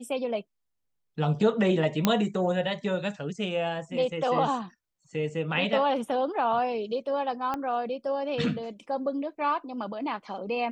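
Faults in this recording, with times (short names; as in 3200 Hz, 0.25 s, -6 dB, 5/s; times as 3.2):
2.05 pop -7 dBFS
7.54 pop -18 dBFS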